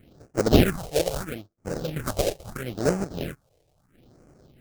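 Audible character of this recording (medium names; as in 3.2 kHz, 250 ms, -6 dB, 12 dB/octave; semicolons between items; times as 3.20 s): chopped level 0.51 Hz, depth 60%, duty 55%; aliases and images of a low sample rate 1 kHz, jitter 20%; phasing stages 4, 0.76 Hz, lowest notch 220–3500 Hz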